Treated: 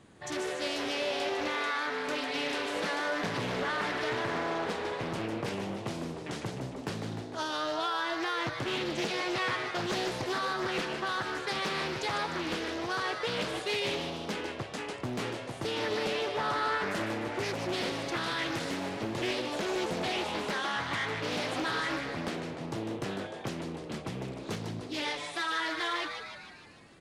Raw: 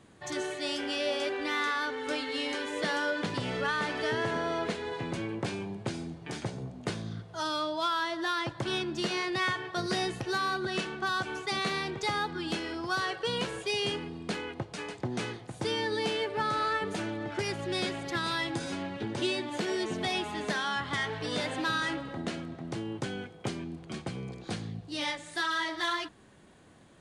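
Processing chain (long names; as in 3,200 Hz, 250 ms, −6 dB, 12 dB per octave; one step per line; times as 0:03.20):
brickwall limiter −24 dBFS, peak gain reduction 4 dB
on a send: echo with shifted repeats 151 ms, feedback 58%, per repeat +140 Hz, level −7 dB
on the sum: highs frequency-modulated by the lows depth 0.62 ms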